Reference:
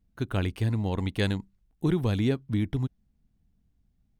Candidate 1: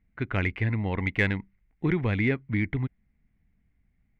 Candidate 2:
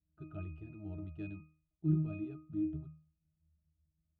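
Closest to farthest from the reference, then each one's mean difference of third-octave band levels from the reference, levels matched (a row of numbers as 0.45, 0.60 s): 1, 2; 4.0, 11.0 dB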